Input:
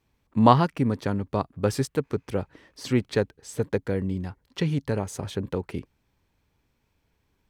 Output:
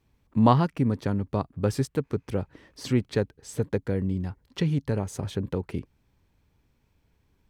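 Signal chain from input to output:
low-shelf EQ 310 Hz +6 dB
in parallel at −2.5 dB: downward compressor, threshold −31 dBFS, peak gain reduction 21 dB
on the sum: level −5.5 dB

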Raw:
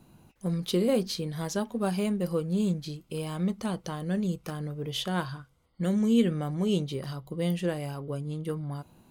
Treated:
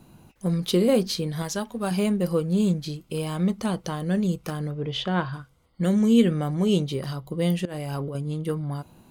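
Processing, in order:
0:01.42–0:01.91: parametric band 320 Hz −6 dB 2.7 octaves
0:04.70–0:05.32: low-pass filter 4,900 Hz → 2,600 Hz 12 dB per octave
0:07.65–0:08.15: compressor whose output falls as the input rises −37 dBFS, ratio −1
level +5 dB

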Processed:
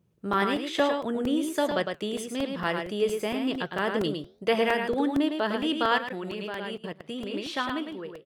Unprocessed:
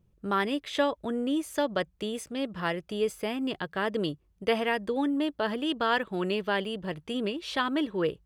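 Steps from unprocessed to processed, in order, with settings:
fade-out on the ending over 0.95 s
flanger 1.1 Hz, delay 5.4 ms, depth 8.8 ms, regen −85%
single-tap delay 107 ms −5.5 dB
0:05.98–0:07.34: output level in coarse steps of 20 dB
high-pass filter 120 Hz 12 dB per octave
regular buffer underruns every 0.23 s, samples 128, repeat, from 0:00.33
level +6 dB

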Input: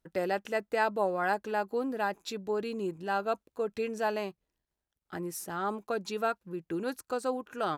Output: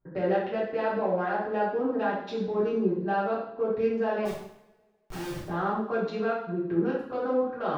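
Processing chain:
adaptive Wiener filter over 15 samples
brickwall limiter −26.5 dBFS, peak gain reduction 11 dB
high-frequency loss of the air 280 metres
0:04.25–0:05.42: comparator with hysteresis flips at −56.5 dBFS
coupled-rooms reverb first 0.67 s, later 1.8 s, from −23 dB, DRR −8.5 dB

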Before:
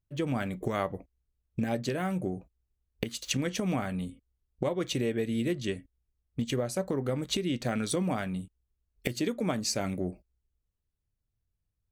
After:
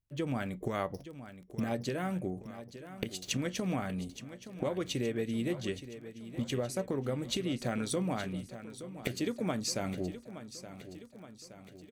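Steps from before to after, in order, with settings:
0:00.94–0:01.60: samples sorted by size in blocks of 8 samples
surface crackle 12 per second −43 dBFS
repeating echo 871 ms, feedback 57%, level −13 dB
level −3.5 dB

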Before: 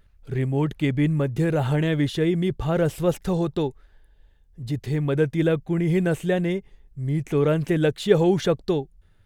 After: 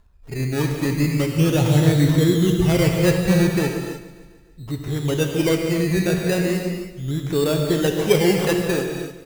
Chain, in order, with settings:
0:01.37–0:03.59: parametric band 110 Hz +7.5 dB 2.1 octaves
sample-and-hold swept by an LFO 16×, swing 60% 0.37 Hz
repeating echo 146 ms, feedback 58%, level −16 dB
reverb whose tail is shaped and stops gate 340 ms flat, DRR 2.5 dB

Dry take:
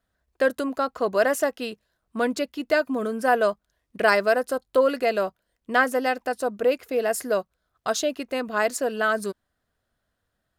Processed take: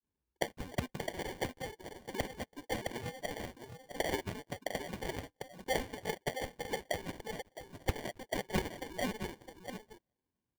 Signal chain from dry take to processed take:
comb filter 2.3 ms, depth 74%
granular cloud, spray 10 ms, pitch spread up and down by 3 semitones
downward compressor 6 to 1, threshold −22 dBFS, peak gain reduction 10 dB
envelope filter 220–3,200 Hz, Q 3.8, up, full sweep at −22.5 dBFS
single-tap delay 662 ms −7.5 dB
sample-rate reduction 1,300 Hz, jitter 0%
dynamic equaliser 2,400 Hz, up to +5 dB, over −59 dBFS, Q 1.7
level +4 dB

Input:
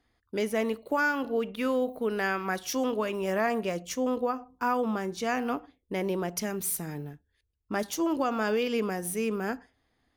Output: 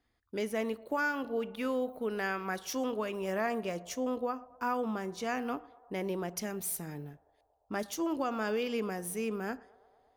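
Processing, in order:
feedback echo with a band-pass in the loop 116 ms, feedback 83%, band-pass 730 Hz, level −22 dB
level −5 dB

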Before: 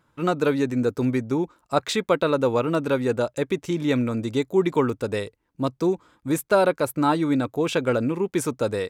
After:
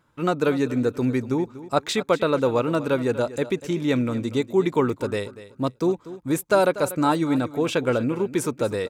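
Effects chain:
0:06.45–0:07.26: parametric band 6,800 Hz +7 dB 0.67 octaves
repeating echo 241 ms, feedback 25%, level −15.5 dB

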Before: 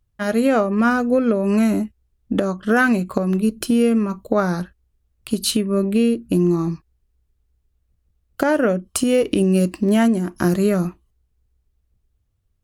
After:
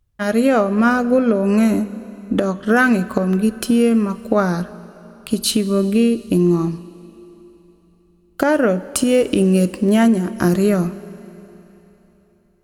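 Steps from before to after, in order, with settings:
four-comb reverb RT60 3.5 s, combs from 31 ms, DRR 16 dB
level +2 dB

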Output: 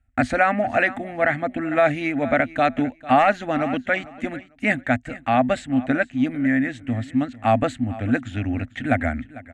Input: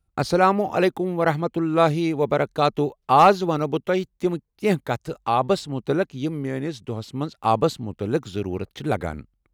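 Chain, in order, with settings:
drawn EQ curve 110 Hz 0 dB, 180 Hz −18 dB, 250 Hz +10 dB, 390 Hz −23 dB, 680 Hz +2 dB, 990 Hz −16 dB, 1,800 Hz +10 dB, 5,100 Hz −20 dB, 7,800 Hz −5 dB, 13,000 Hz −29 dB
repeating echo 448 ms, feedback 19%, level −19 dB
boost into a limiter +12.5 dB
level −6.5 dB

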